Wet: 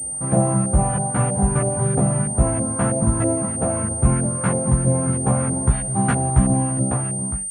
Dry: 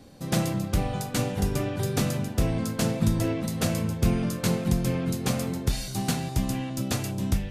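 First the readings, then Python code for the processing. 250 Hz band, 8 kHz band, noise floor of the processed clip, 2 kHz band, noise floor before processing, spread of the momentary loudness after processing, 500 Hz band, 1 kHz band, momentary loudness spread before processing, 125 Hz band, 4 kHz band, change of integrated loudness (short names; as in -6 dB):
+5.5 dB, +14.5 dB, -27 dBFS, +2.5 dB, -36 dBFS, 3 LU, +7.0 dB, +10.0 dB, 4 LU, +7.5 dB, under -10 dB, +7.5 dB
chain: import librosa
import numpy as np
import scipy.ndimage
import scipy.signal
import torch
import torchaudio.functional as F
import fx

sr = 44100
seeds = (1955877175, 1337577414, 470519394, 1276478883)

y = fx.fade_out_tail(x, sr, length_s=1.03)
y = scipy.signal.sosfilt(scipy.signal.butter(2, 48.0, 'highpass', fs=sr, output='sos'), y)
y = fx.peak_eq(y, sr, hz=360.0, db=-7.5, octaves=2.0)
y = fx.rider(y, sr, range_db=5, speed_s=2.0)
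y = fx.filter_lfo_lowpass(y, sr, shape='saw_up', hz=3.1, low_hz=560.0, high_hz=1600.0, q=1.6)
y = fx.air_absorb(y, sr, metres=83.0)
y = fx.doubler(y, sr, ms=15.0, db=-2.5)
y = fx.pwm(y, sr, carrier_hz=8800.0)
y = y * librosa.db_to_amplitude(8.0)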